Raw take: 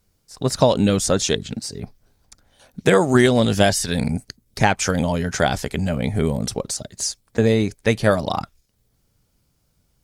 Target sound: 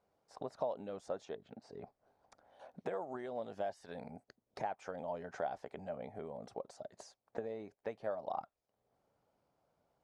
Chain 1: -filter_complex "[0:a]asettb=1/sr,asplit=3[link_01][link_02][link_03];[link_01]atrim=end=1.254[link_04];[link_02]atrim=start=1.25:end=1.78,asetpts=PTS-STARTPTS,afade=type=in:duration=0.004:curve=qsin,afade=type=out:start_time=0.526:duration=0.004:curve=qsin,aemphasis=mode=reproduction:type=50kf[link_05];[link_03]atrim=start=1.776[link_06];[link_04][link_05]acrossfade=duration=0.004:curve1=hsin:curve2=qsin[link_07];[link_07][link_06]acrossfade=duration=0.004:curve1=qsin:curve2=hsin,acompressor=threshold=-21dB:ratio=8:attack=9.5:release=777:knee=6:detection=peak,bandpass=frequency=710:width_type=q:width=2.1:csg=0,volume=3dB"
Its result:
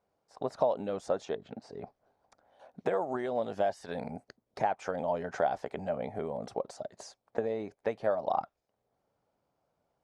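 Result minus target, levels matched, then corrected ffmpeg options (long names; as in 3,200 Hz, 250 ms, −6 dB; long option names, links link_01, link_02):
downward compressor: peak gain reduction −9.5 dB
-filter_complex "[0:a]asettb=1/sr,asplit=3[link_01][link_02][link_03];[link_01]atrim=end=1.254[link_04];[link_02]atrim=start=1.25:end=1.78,asetpts=PTS-STARTPTS,afade=type=in:duration=0.004:curve=qsin,afade=type=out:start_time=0.526:duration=0.004:curve=qsin,aemphasis=mode=reproduction:type=50kf[link_05];[link_03]atrim=start=1.776[link_06];[link_04][link_05]acrossfade=duration=0.004:curve1=hsin:curve2=qsin[link_07];[link_07][link_06]acrossfade=duration=0.004:curve1=qsin:curve2=hsin,acompressor=threshold=-32dB:ratio=8:attack=9.5:release=777:knee=6:detection=peak,bandpass=frequency=710:width_type=q:width=2.1:csg=0,volume=3dB"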